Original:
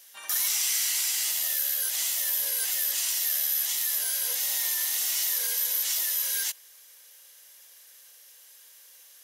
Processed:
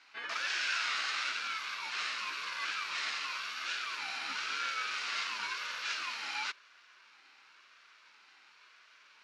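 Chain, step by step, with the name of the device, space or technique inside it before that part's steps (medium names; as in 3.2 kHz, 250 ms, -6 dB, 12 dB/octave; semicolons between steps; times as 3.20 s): voice changer toy (ring modulator with a swept carrier 630 Hz, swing 30%, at 0.96 Hz; cabinet simulation 440–3700 Hz, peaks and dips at 510 Hz -4 dB, 750 Hz -4 dB, 1.5 kHz +7 dB, 3.4 kHz -6 dB); trim +6 dB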